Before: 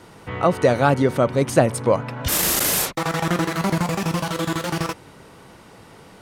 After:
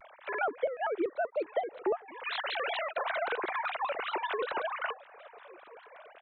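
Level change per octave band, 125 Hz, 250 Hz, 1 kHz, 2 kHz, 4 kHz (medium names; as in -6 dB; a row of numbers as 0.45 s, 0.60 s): under -40 dB, -20.5 dB, -9.0 dB, -7.0 dB, -12.5 dB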